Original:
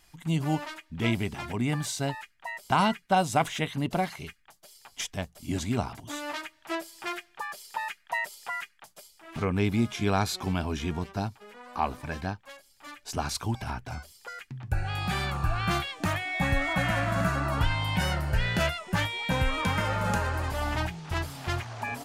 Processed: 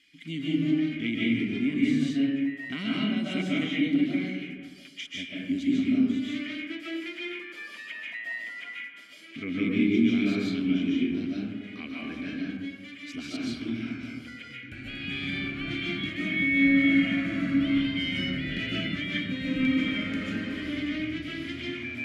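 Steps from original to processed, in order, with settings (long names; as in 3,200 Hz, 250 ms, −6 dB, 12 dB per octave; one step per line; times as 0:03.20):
formant filter i
comb and all-pass reverb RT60 1.3 s, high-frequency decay 0.35×, pre-delay 105 ms, DRR −6.5 dB
one half of a high-frequency compander encoder only
level +6.5 dB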